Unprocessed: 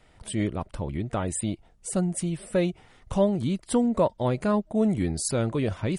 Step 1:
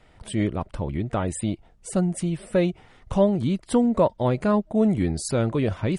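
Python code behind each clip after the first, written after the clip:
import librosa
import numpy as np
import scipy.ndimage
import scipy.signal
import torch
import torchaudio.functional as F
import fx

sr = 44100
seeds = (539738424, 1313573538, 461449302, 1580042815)

y = fx.high_shelf(x, sr, hz=6100.0, db=-8.5)
y = F.gain(torch.from_numpy(y), 3.0).numpy()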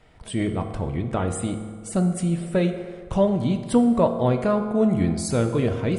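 y = fx.rev_fdn(x, sr, rt60_s=1.8, lf_ratio=0.9, hf_ratio=0.6, size_ms=13.0, drr_db=5.5)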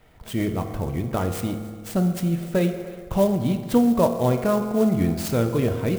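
y = x + 10.0 ** (-21.0 / 20.0) * np.pad(x, (int(297 * sr / 1000.0), 0))[:len(x)]
y = fx.clock_jitter(y, sr, seeds[0], jitter_ms=0.026)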